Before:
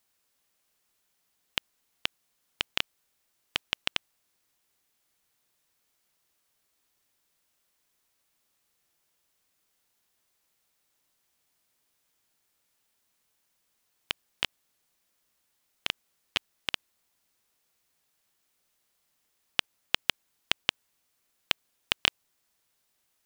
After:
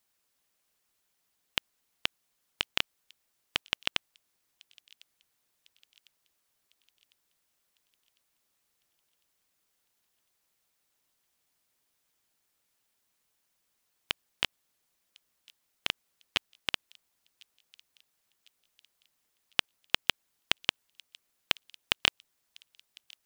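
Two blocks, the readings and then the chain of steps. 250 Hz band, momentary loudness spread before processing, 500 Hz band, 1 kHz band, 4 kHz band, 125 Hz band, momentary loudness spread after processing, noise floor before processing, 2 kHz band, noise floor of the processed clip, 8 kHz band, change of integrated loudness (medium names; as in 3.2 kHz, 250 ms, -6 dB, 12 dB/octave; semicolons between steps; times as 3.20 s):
0.0 dB, 7 LU, 0.0 dB, 0.0 dB, 0.0 dB, 0.0 dB, 7 LU, -75 dBFS, 0.0 dB, -78 dBFS, 0.0 dB, 0.0 dB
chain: feedback echo behind a high-pass 1052 ms, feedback 50%, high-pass 3.9 kHz, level -21 dB; harmonic-percussive split percussive +5 dB; trim -5 dB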